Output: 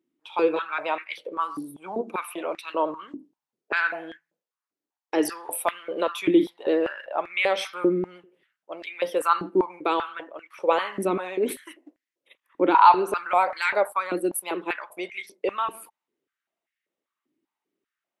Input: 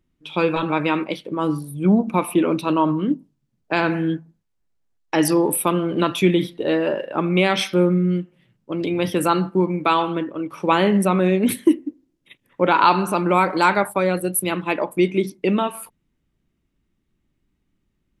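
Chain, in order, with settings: vibrato 13 Hz 30 cents; stepped high-pass 5.1 Hz 310–1900 Hz; gain -8.5 dB

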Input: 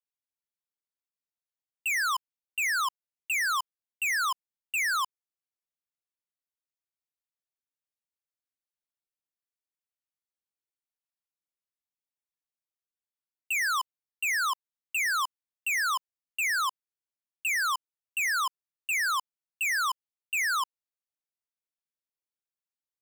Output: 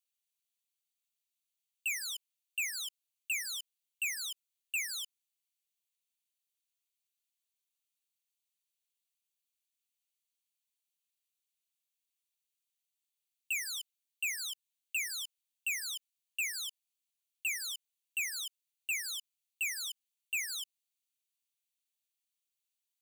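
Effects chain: limiter -37.5 dBFS, peak gain reduction 10.5 dB; steep high-pass 2400 Hz 36 dB/oct; notch 5200 Hz, Q 7.1; gain +7.5 dB

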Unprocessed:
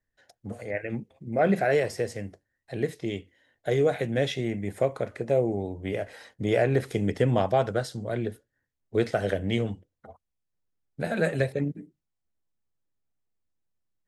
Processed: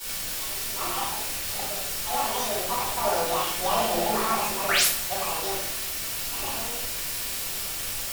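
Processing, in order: Doppler pass-by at 6.26, 11 m/s, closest 3.3 m; HPF 250 Hz 12 dB/oct; reverse; compressor 6:1, threshold -41 dBFS, peak gain reduction 19 dB; reverse; painted sound rise, 8.1–8.42, 630–8500 Hz -40 dBFS; in parallel at -4.5 dB: requantised 6-bit, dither triangular; on the sum: speed mistake 45 rpm record played at 78 rpm; shoebox room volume 150 m³, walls mixed, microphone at 4.6 m; three-band expander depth 40%

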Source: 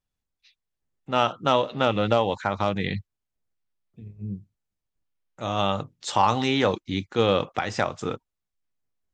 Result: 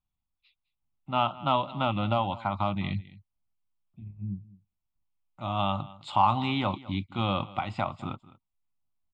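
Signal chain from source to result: high shelf 3000 Hz -9.5 dB; fixed phaser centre 1700 Hz, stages 6; on a send: echo 0.208 s -19.5 dB

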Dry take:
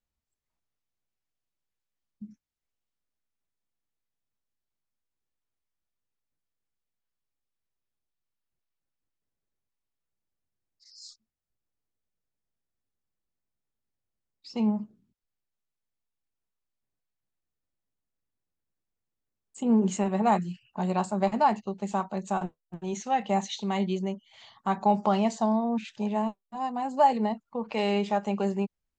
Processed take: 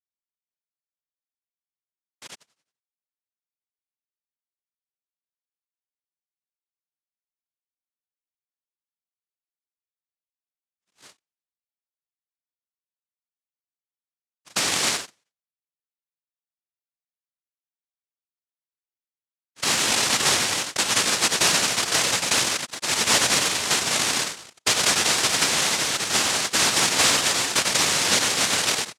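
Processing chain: frequency-shifting echo 90 ms, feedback 44%, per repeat +120 Hz, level -9 dB; sample leveller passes 5; steep high-pass 440 Hz 36 dB/oct; in parallel at -6.5 dB: bit-crush 4-bit; on the sum: LPF 1300 Hz; compressor 4:1, threshold -19 dBFS, peak gain reduction 9 dB; noise vocoder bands 1

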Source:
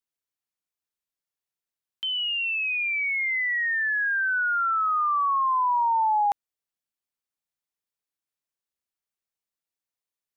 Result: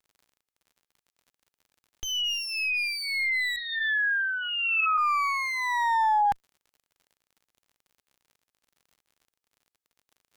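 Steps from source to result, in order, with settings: minimum comb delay 2.4 ms; crackle 58/s -49 dBFS; 3.56–4.98 LPC vocoder at 8 kHz pitch kept

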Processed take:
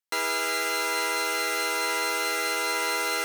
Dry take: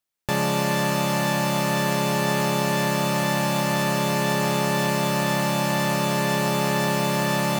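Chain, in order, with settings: HPF 240 Hz 12 dB/oct; speed mistake 33 rpm record played at 78 rpm; gain -3 dB

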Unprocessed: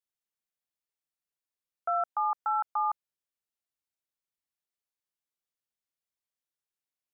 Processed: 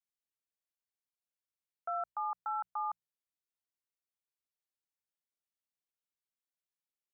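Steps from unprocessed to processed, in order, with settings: notches 60/120/180 Hz; gain -7.5 dB

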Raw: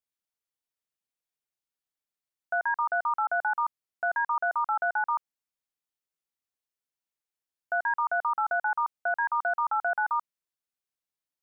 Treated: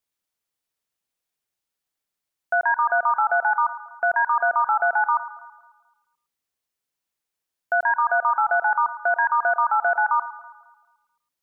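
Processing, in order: echo with dull and thin repeats by turns 0.109 s, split 1200 Hz, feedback 56%, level -12.5 dB; gain +7 dB

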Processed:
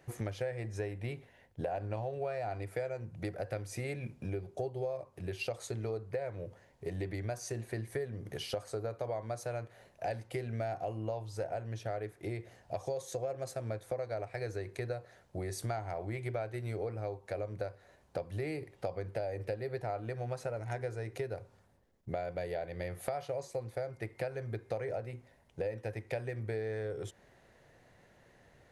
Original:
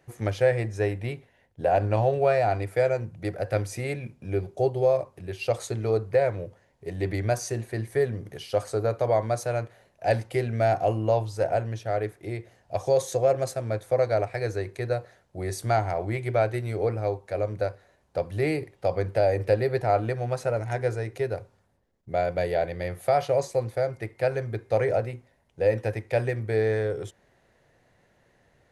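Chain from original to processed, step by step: compressor 6:1, threshold -36 dBFS, peak gain reduction 18.5 dB; gain +1 dB

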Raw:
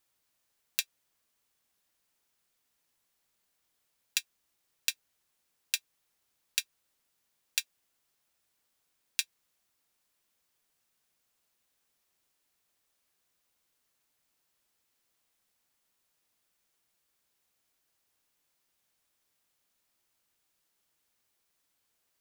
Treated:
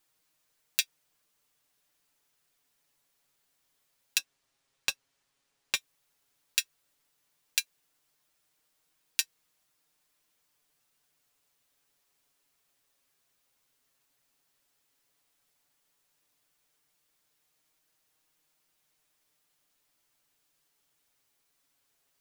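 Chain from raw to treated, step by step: 4.18–5.76 median filter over 3 samples; flange 0.11 Hz, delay 6.4 ms, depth 1 ms, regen +22%; gain +6.5 dB

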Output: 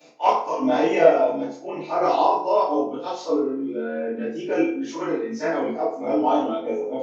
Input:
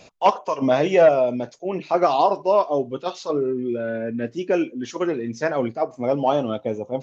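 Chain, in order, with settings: short-time reversal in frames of 61 ms; HPF 190 Hz 24 dB/oct; FDN reverb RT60 0.58 s, low-frequency decay 0.85×, high-frequency decay 0.65×, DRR -8 dB; gain -6 dB

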